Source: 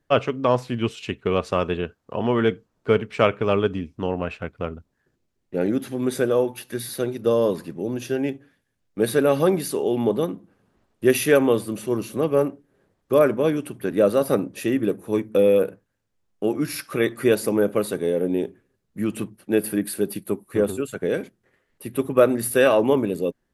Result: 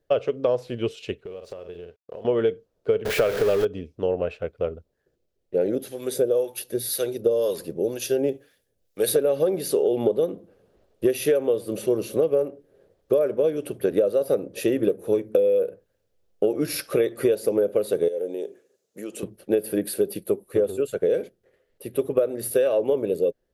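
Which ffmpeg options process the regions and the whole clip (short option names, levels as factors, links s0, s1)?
-filter_complex "[0:a]asettb=1/sr,asplit=3[s0][s1][s2];[s0]atrim=end=1.244[s3];[s1]atrim=start=1.24:end=2.25,asetpts=PTS-STARTPTS,afade=t=in:d=0.004:c=qsin,afade=t=out:st=1.006:d=0.004:c=qsin,asplit=2[s4][s5];[s5]adelay=47,volume=0.316[s6];[s4][s6]amix=inputs=2:normalize=0,atrim=end_sample=44541,acompressor=threshold=0.02:ratio=12:attack=3.2:release=140:knee=1:detection=peak,aeval=exprs='sgn(val(0))*max(abs(val(0))-0.00106,0)':c=same[s7];[s2]atrim=start=2.246[s8];[s3][s7]acrossfade=d=0.004:c1=hsin:c2=qsin[s9];[s9][s8]acrossfade=d=0.004:c1=qsin:c2=hsin,asettb=1/sr,asplit=3[s10][s11][s12];[s10]atrim=end=3.054[s13];[s11]atrim=start=3.05:end=3.65,asetpts=PTS-STARTPTS,afade=t=in:d=0.004:c=qsin,afade=t=out:st=0.596:d=0.004:c=qsin,aeval=exprs='val(0)+0.5*0.119*sgn(val(0))':c=same,equalizer=f=1600:w=2.2:g=7.5[s14];[s12]atrim=start=3.646[s15];[s13][s14]acrossfade=d=0.004:c1=hsin:c2=qsin[s16];[s16][s15]acrossfade=d=0.004:c1=qsin:c2=hsin,asettb=1/sr,asplit=3[s17][s18][s19];[s17]atrim=end=5.754[s20];[s18]atrim=start=5.75:end=9.16,asetpts=PTS-STARTPTS,afade=t=in:d=0.004:c=qsin,afade=t=out:st=3.406:d=0.004:c=qsin,highshelf=f=4100:g=11,acrossover=split=840[s21][s22];[s21]aeval=exprs='val(0)*(1-0.7/2+0.7/2*cos(2*PI*2*n/s))':c=same[s23];[s22]aeval=exprs='val(0)*(1-0.7/2-0.7/2*cos(2*PI*2*n/s))':c=same[s24];[s23][s24]amix=inputs=2:normalize=0[s25];[s19]atrim=start=9.156[s26];[s20][s25]acrossfade=d=0.004:c1=hsin:c2=qsin[s27];[s27][s26]acrossfade=d=0.004:c1=qsin:c2=hsin,asettb=1/sr,asplit=3[s28][s29][s30];[s28]atrim=end=18.084[s31];[s29]atrim=start=18.08:end=19.23,asetpts=PTS-STARTPTS,afade=t=in:d=0.004:c=qsin,afade=t=out:st=1.146:d=0.004:c=qsin,highpass=300,equalizer=f=6800:t=o:w=0.84:g=12,acompressor=threshold=0.0158:ratio=3:attack=3.2:release=140:knee=1:detection=peak[s32];[s30]atrim=start=19.226[s33];[s31][s32]acrossfade=d=0.004:c1=hsin:c2=qsin[s34];[s34][s33]acrossfade=d=0.004:c1=qsin:c2=hsin,dynaudnorm=f=590:g=11:m=3.76,equalizer=f=125:t=o:w=1:g=-4,equalizer=f=250:t=o:w=1:g=-8,equalizer=f=500:t=o:w=1:g=11,equalizer=f=1000:t=o:w=1:g=-9,equalizer=f=2000:t=o:w=1:g=-5,equalizer=f=8000:t=o:w=1:g=-5,acompressor=threshold=0.141:ratio=16"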